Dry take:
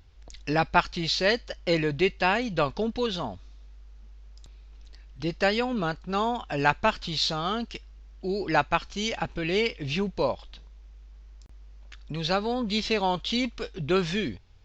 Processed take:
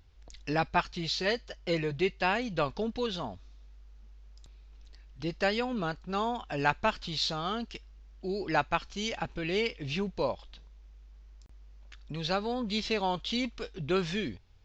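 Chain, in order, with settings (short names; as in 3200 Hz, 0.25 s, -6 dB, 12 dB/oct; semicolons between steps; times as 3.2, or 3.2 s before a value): 0.68–2.22 notch comb 280 Hz; gain -4.5 dB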